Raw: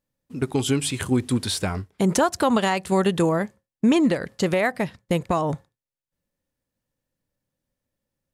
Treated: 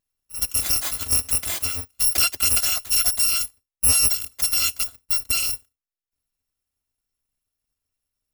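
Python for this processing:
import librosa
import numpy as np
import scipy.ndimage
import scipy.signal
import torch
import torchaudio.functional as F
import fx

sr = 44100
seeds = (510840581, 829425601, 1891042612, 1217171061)

y = fx.bit_reversed(x, sr, seeds[0], block=256)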